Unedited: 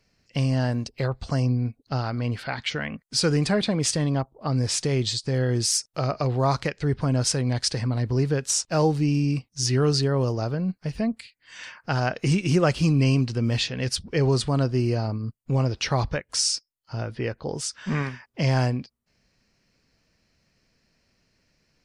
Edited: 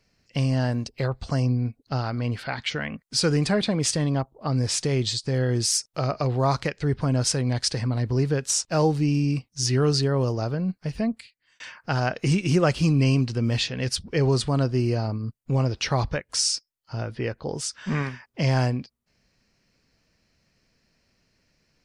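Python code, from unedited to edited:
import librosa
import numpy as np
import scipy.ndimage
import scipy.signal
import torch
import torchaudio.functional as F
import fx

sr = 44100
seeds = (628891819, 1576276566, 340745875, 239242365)

y = fx.edit(x, sr, fx.fade_out_span(start_s=11.1, length_s=0.5), tone=tone)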